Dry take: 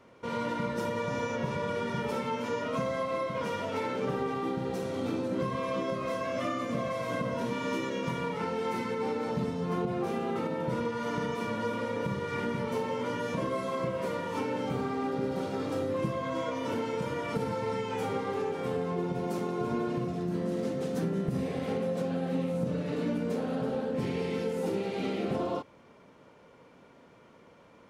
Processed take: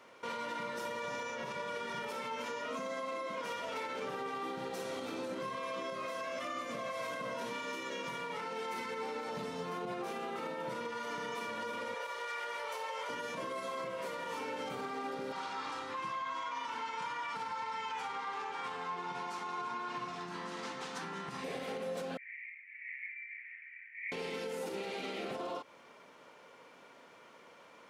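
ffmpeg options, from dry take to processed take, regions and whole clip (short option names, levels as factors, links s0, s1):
-filter_complex "[0:a]asettb=1/sr,asplit=3[s0][s1][s2];[s0]atrim=end=2.704[s3];[s1]atrim=start=2.7:end=3.42,asetpts=PTS-STARTPTS,afade=t=in:d=0.004:c=qsin,afade=t=out:st=0.716:d=0.004:c=qsin,highpass=f=230:t=q:w=2.4,equalizer=f=6800:t=o:w=0.31:g=4.5[s4];[s2]atrim=start=3.416[s5];[s3][s4]acrossfade=d=0.004:c1=hsin:c2=qsin[s6];[s6][s5]acrossfade=d=0.004:c1=qsin:c2=hsin,asettb=1/sr,asplit=3[s7][s8][s9];[s7]atrim=end=11.944[s10];[s8]atrim=start=11.94:end=13.09,asetpts=PTS-STARTPTS,afade=t=in:d=0.004:c=qsin,afade=t=out:st=1.146:d=0.004:c=qsin,highpass=f=510:w=0.5412,highpass=f=510:w=1.3066,aeval=exprs='val(0)+0.00126*(sin(2*PI*60*n/s)+sin(2*PI*2*60*n/s)/2+sin(2*PI*3*60*n/s)/3+sin(2*PI*4*60*n/s)/4+sin(2*PI*5*60*n/s)/5)':c=same[s11];[s9]atrim=start=13.086[s12];[s10][s11]acrossfade=d=0.004:c1=hsin:c2=qsin[s13];[s13][s12]acrossfade=d=0.004:c1=qsin:c2=hsin,asettb=1/sr,asplit=3[s14][s15][s16];[s14]atrim=end=15.324[s17];[s15]atrim=start=15.32:end=21.44,asetpts=PTS-STARTPTS,afade=t=in:d=0.004:c=qsin,afade=t=out:st=6.116:d=0.004:c=qsin,lowpass=6500,lowshelf=f=730:t=q:w=3:g=-7[s18];[s16]atrim=start=21.436[s19];[s17][s18]acrossfade=d=0.004:c1=hsin:c2=qsin[s20];[s20][s19]acrossfade=d=0.004:c1=qsin:c2=hsin,asettb=1/sr,asplit=3[s21][s22][s23];[s21]atrim=end=22.174[s24];[s22]atrim=start=22.17:end=24.12,asetpts=PTS-STARTPTS,afade=t=in:d=0.004:c=qsin,afade=t=out:st=1.946:d=0.004:c=qsin,asuperpass=centerf=2100:order=8:qfactor=3.9,acontrast=70[s25];[s23]atrim=start=24.116[s26];[s24][s25]acrossfade=d=0.004:c1=hsin:c2=qsin[s27];[s27][s26]acrossfade=d=0.004:c1=qsin:c2=hsin,highpass=f=1000:p=1,alimiter=level_in=3.98:limit=0.0631:level=0:latency=1:release=138,volume=0.251,volume=1.78"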